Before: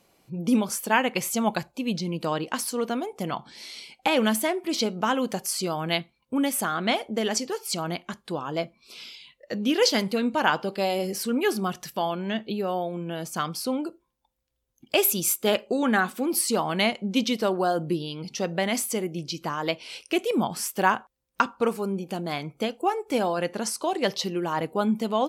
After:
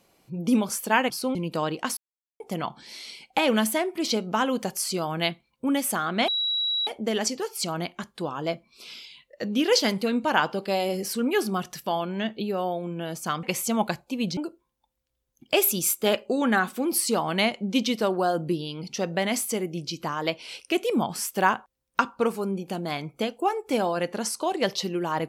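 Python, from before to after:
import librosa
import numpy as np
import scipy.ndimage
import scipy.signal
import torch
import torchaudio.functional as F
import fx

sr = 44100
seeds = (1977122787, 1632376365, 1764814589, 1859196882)

y = fx.edit(x, sr, fx.swap(start_s=1.1, length_s=0.94, other_s=13.53, other_length_s=0.25),
    fx.silence(start_s=2.66, length_s=0.43),
    fx.insert_tone(at_s=6.97, length_s=0.59, hz=3890.0, db=-23.0), tone=tone)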